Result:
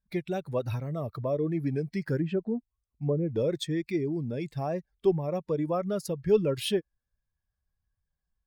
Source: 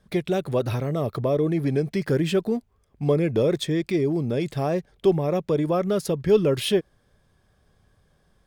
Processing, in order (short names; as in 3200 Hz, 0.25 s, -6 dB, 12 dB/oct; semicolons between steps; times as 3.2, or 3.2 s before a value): per-bin expansion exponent 1.5; 2.19–3.29 treble ducked by the level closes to 710 Hz, closed at -20.5 dBFS; gain -3.5 dB